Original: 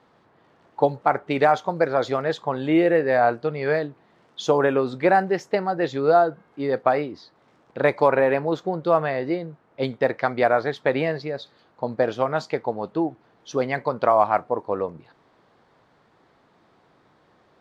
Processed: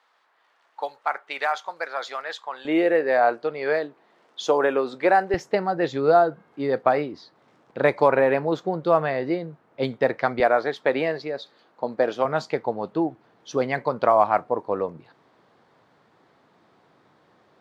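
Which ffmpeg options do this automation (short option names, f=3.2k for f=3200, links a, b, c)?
-af "asetnsamples=n=441:p=0,asendcmd='2.65 highpass f 330;5.34 highpass f 99;10.4 highpass f 230;12.25 highpass f 99',highpass=1.1k"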